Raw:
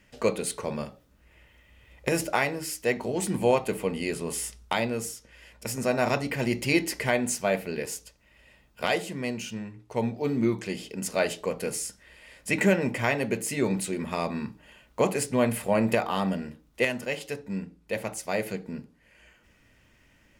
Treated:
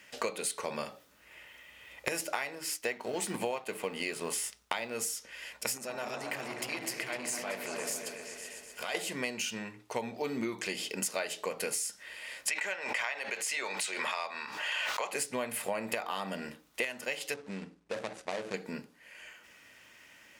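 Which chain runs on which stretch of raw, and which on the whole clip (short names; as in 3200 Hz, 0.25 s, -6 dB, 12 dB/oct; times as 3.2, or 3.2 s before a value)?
2.55–4.95 G.711 law mismatch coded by A + high shelf 5600 Hz -5.5 dB
5.77–8.95 compressor 3:1, threshold -39 dBFS + repeats that get brighter 0.126 s, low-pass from 400 Hz, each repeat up 2 oct, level -3 dB + core saturation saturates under 810 Hz
12.48–15.13 three-band isolator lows -22 dB, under 570 Hz, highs -13 dB, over 7100 Hz + backwards sustainer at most 44 dB/s
17.34–18.54 median filter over 41 samples + LPF 10000 Hz 24 dB/oct + compressor 3:1, threshold -32 dBFS
whole clip: HPF 1000 Hz 6 dB/oct; compressor 10:1, threshold -39 dBFS; gain +8.5 dB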